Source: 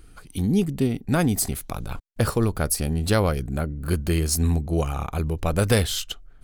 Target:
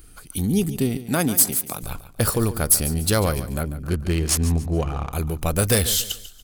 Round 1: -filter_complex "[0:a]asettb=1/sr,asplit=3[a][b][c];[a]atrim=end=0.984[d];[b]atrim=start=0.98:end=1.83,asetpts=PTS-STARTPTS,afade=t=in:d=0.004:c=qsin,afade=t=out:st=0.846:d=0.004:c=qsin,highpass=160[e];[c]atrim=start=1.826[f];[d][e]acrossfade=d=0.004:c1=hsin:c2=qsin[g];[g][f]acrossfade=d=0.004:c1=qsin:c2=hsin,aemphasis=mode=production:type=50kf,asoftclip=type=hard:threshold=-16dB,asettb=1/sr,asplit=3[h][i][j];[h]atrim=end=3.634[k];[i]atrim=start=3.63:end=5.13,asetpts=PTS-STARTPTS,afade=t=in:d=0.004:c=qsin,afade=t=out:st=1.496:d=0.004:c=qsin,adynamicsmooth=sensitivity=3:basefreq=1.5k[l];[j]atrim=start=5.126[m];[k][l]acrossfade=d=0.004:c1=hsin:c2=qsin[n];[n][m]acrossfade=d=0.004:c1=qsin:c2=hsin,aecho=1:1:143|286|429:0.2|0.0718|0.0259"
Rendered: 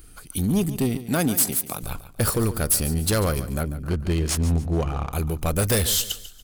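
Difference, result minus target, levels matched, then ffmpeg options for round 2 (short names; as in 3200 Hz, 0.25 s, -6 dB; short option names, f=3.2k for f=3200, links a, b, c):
hard clip: distortion +7 dB
-filter_complex "[0:a]asettb=1/sr,asplit=3[a][b][c];[a]atrim=end=0.984[d];[b]atrim=start=0.98:end=1.83,asetpts=PTS-STARTPTS,afade=t=in:d=0.004:c=qsin,afade=t=out:st=0.846:d=0.004:c=qsin,highpass=160[e];[c]atrim=start=1.826[f];[d][e]acrossfade=d=0.004:c1=hsin:c2=qsin[g];[g][f]acrossfade=d=0.004:c1=qsin:c2=hsin,aemphasis=mode=production:type=50kf,asoftclip=type=hard:threshold=-9.5dB,asettb=1/sr,asplit=3[h][i][j];[h]atrim=end=3.634[k];[i]atrim=start=3.63:end=5.13,asetpts=PTS-STARTPTS,afade=t=in:d=0.004:c=qsin,afade=t=out:st=1.496:d=0.004:c=qsin,adynamicsmooth=sensitivity=3:basefreq=1.5k[l];[j]atrim=start=5.126[m];[k][l]acrossfade=d=0.004:c1=hsin:c2=qsin[n];[n][m]acrossfade=d=0.004:c1=qsin:c2=hsin,aecho=1:1:143|286|429:0.2|0.0718|0.0259"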